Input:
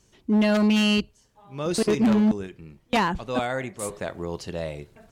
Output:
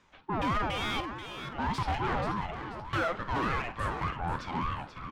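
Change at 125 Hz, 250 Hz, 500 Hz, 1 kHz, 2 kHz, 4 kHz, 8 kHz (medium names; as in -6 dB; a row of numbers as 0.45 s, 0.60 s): -4.0 dB, -15.5 dB, -10.5 dB, 0.0 dB, -3.5 dB, -8.5 dB, -15.5 dB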